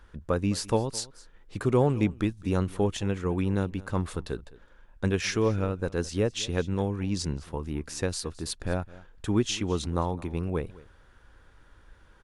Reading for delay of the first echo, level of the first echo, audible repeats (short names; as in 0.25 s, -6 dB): 0.212 s, -20.5 dB, 1